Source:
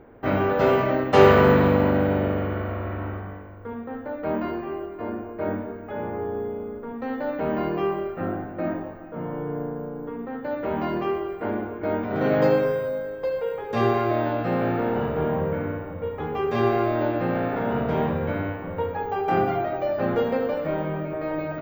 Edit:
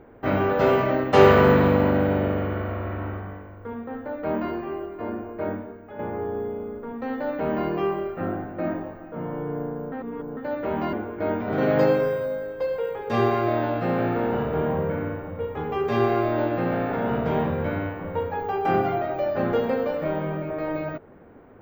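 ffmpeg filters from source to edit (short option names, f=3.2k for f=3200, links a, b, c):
-filter_complex "[0:a]asplit=5[a][b][c][d][e];[a]atrim=end=5.99,asetpts=PTS-STARTPTS,afade=t=out:st=5.39:d=0.6:c=qua:silence=0.421697[f];[b]atrim=start=5.99:end=9.922,asetpts=PTS-STARTPTS,afade=t=in:d=0.004:c=hsin:silence=0.421697[g];[c]atrim=start=9.918:end=10.372,asetpts=PTS-STARTPTS,areverse[h];[d]atrim=start=10.368:end=10.932[i];[e]atrim=start=11.558[j];[f][g]concat=n=2:v=0:a=1[k];[k][h]acrossfade=d=0.004:c1=hsin:c2=hsin[l];[l][i]acrossfade=d=0.004:c1=hsin:c2=hsin[m];[m][j]acrossfade=d=0.004:c1=hsin:c2=hsin"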